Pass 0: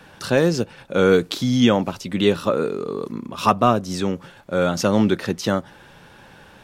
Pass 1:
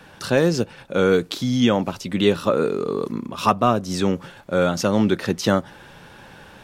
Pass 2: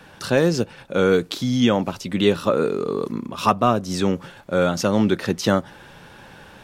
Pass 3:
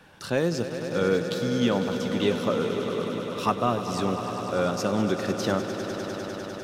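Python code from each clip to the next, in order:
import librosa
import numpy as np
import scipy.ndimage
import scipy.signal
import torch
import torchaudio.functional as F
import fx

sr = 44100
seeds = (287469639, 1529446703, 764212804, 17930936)

y1 = fx.rider(x, sr, range_db=3, speed_s=0.5)
y2 = y1
y3 = fx.echo_swell(y2, sr, ms=100, loudest=5, wet_db=-12.0)
y3 = F.gain(torch.from_numpy(y3), -7.0).numpy()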